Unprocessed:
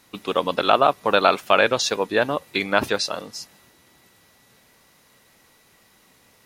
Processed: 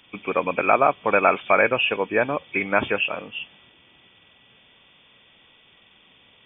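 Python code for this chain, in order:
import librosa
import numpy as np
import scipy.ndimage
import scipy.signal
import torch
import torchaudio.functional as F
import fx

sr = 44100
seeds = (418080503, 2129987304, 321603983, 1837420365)

y = fx.freq_compress(x, sr, knee_hz=2200.0, ratio=4.0)
y = F.gain(torch.from_numpy(y), -1.0).numpy()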